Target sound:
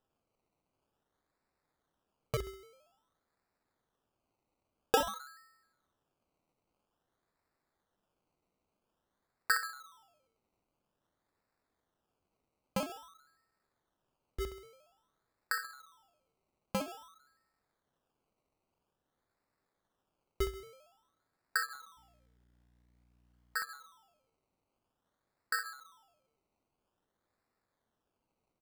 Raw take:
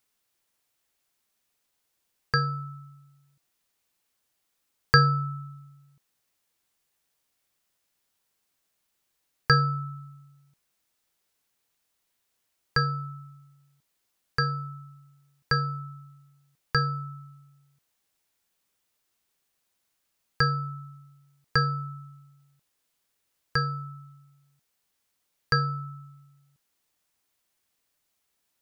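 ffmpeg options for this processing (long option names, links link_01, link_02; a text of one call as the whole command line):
ffmpeg -i in.wav -filter_complex "[0:a]highpass=frequency=690:width=0.5412,highpass=frequency=690:width=1.3066,aecho=1:1:66|132|198|264:0.447|0.147|0.0486|0.0161,asettb=1/sr,asplit=3[link_01][link_02][link_03];[link_01]atrim=end=21.974[link_04];[link_02]atrim=start=21.97:end=23.57,asetpts=PTS-STARTPTS,afade=type=in:duration=0.004:curve=qsin,afade=type=out:start_time=1.596:duration=0.004:curve=qsin,aeval=exprs='val(0)+0.001*(sin(2*PI*60*n/s)+sin(2*PI*2*60*n/s)/2+sin(2*PI*3*60*n/s)/3+sin(2*PI*4*60*n/s)/4+sin(2*PI*5*60*n/s)/5)':channel_layout=same[link_05];[link_03]atrim=start=23.566[link_06];[link_04][link_05]acrossfade=duration=0.004:curve1=hsin:curve2=qsin[link_07];[link_07][link_06]acrossfade=duration=0.004:curve1=qsin:curve2=hsin,acrusher=samples=20:mix=1:aa=0.000001:lfo=1:lforange=12:lforate=0.5,volume=-8.5dB" out.wav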